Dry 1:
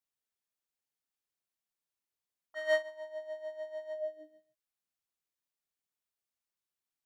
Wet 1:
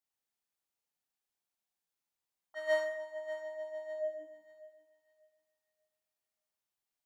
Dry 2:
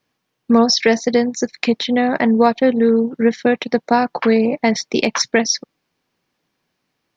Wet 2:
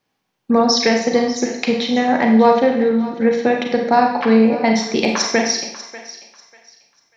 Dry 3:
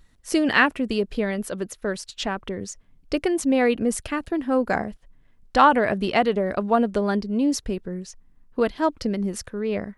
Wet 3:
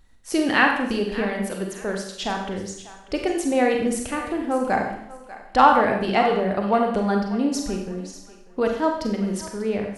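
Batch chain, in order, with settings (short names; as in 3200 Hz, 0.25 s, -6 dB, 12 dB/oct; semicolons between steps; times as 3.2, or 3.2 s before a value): bell 810 Hz +6 dB 0.29 oct; on a send: thinning echo 0.592 s, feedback 27%, high-pass 660 Hz, level -15 dB; on the sum: Schroeder reverb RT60 0.72 s, combs from 32 ms, DRR 2 dB; gain -2 dB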